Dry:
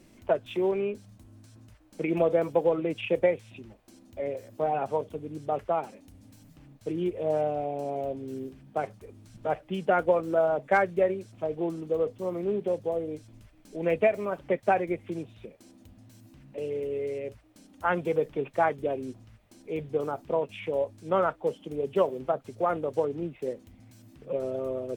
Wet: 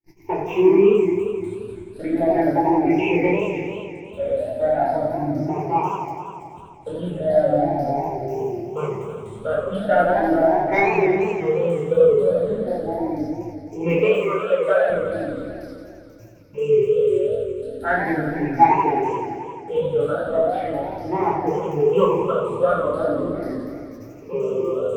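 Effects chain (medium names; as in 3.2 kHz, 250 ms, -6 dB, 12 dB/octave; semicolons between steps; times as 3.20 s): drifting ripple filter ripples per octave 0.75, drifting +0.38 Hz, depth 23 dB; in parallel at -8 dB: saturation -12.5 dBFS, distortion -16 dB; on the sum: simulated room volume 520 m³, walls furnished, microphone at 4.4 m; gate -36 dBFS, range -40 dB; 13.99–14.90 s: inverse Chebyshev high-pass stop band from 160 Hz, stop band 50 dB; modulated delay 87 ms, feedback 79%, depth 193 cents, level -6.5 dB; trim -8.5 dB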